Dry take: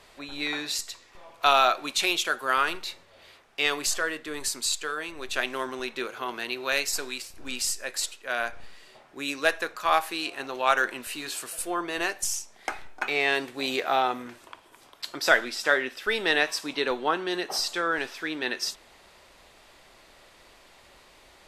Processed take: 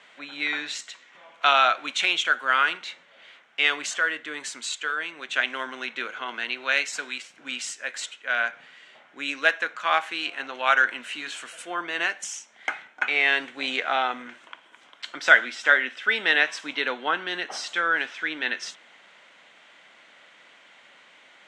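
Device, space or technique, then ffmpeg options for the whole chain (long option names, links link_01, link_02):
television speaker: -af "highpass=frequency=170:width=0.5412,highpass=frequency=170:width=1.3066,equalizer=frequency=380:width_type=q:width=4:gain=-7,equalizer=frequency=1500:width_type=q:width=4:gain=8,equalizer=frequency=2100:width_type=q:width=4:gain=8,equalizer=frequency=3100:width_type=q:width=4:gain=8,equalizer=frequency=4800:width_type=q:width=4:gain=-8,lowpass=frequency=7500:width=0.5412,lowpass=frequency=7500:width=1.3066,volume=-2dB"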